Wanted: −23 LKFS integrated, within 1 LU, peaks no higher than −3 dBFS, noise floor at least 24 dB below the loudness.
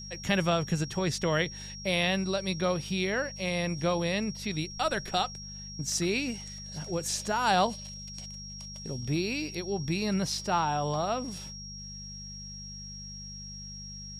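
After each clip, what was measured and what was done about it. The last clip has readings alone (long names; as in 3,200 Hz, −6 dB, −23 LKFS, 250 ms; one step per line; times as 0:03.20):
mains hum 50 Hz; hum harmonics up to 200 Hz; level of the hum −43 dBFS; interfering tone 5,600 Hz; level of the tone −42 dBFS; integrated loudness −31.0 LKFS; sample peak −10.5 dBFS; target loudness −23.0 LKFS
→ hum removal 50 Hz, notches 4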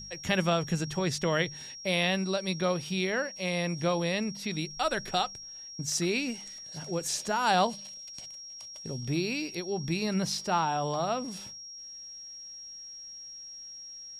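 mains hum none found; interfering tone 5,600 Hz; level of the tone −42 dBFS
→ notch filter 5,600 Hz, Q 30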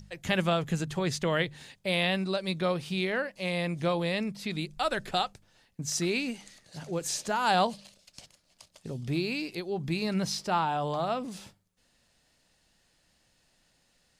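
interfering tone none found; integrated loudness −30.5 LKFS; sample peak −11.0 dBFS; target loudness −23.0 LKFS
→ level +7.5 dB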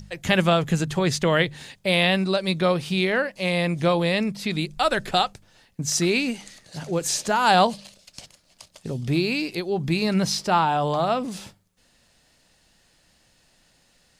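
integrated loudness −23.0 LKFS; sample peak −3.5 dBFS; background noise floor −62 dBFS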